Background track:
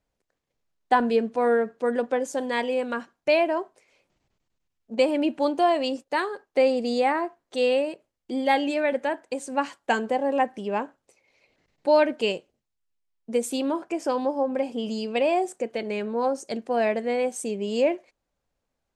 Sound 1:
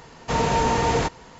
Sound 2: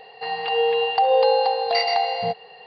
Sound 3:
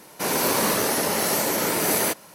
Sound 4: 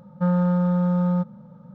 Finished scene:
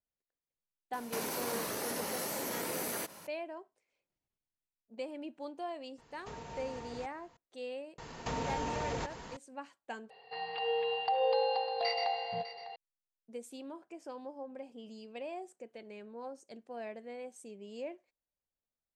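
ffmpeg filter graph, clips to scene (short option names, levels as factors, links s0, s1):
-filter_complex "[1:a]asplit=2[s0][s1];[0:a]volume=0.106[s2];[3:a]acompressor=threshold=0.0316:ratio=6:attack=3.2:release=140:knee=1:detection=peak[s3];[s0]alimiter=limit=0.1:level=0:latency=1:release=411[s4];[s1]acompressor=threshold=0.0251:ratio=6:attack=3.2:release=140:knee=1:detection=peak[s5];[2:a]aecho=1:1:601:0.211[s6];[s2]asplit=2[s7][s8];[s7]atrim=end=10.104[s9];[s6]atrim=end=2.66,asetpts=PTS-STARTPTS,volume=0.237[s10];[s8]atrim=start=12.756[s11];[s3]atrim=end=2.34,asetpts=PTS-STARTPTS,volume=0.596,afade=t=in:d=0.004:c=hsin,afade=t=out:st=2.336:d=0.004:c=hsin,adelay=930[s12];[s4]atrim=end=1.39,asetpts=PTS-STARTPTS,volume=0.141,afade=t=in:d=0.004:c=hsin,afade=t=out:st=1.386:d=0.004:c=hsin,adelay=5980[s13];[s5]atrim=end=1.39,asetpts=PTS-STARTPTS,volume=0.841,afade=t=in:d=0.004:c=hsin,afade=t=out:st=1.386:d=0.004:c=hsin,adelay=7980[s14];[s9][s10]acrossfade=d=0.004:c1=hsin:c2=hsin[s15];[s15][s11]acrossfade=d=0.004:c1=hsin:c2=hsin[s16];[s16][s12][s13][s14]amix=inputs=4:normalize=0"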